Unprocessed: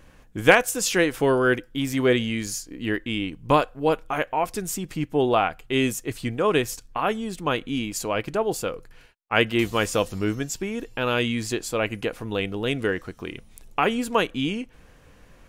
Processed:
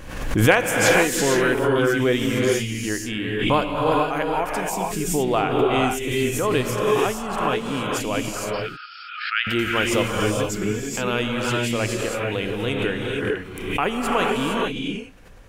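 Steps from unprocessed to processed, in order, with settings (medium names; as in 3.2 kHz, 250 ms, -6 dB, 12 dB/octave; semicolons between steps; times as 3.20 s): 8.29–9.47 s: brick-wall FIR band-pass 1.2–5.4 kHz; gated-style reverb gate 490 ms rising, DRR -1 dB; swell ahead of each attack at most 56 dB/s; trim -1.5 dB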